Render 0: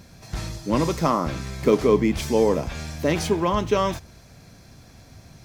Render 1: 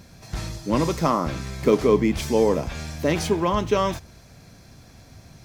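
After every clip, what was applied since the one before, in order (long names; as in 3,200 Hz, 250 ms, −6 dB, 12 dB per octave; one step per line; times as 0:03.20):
no processing that can be heard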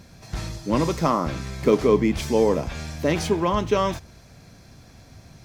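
high-shelf EQ 9,500 Hz −4 dB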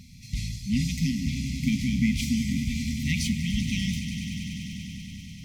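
brick-wall band-stop 270–1,900 Hz
echo that builds up and dies away 97 ms, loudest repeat 5, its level −13.5 dB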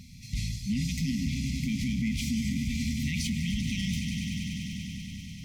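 brickwall limiter −21.5 dBFS, peak gain reduction 9 dB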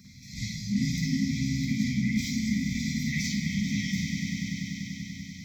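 phaser with its sweep stopped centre 2,800 Hz, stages 6
convolution reverb RT60 1.1 s, pre-delay 45 ms, DRR −4 dB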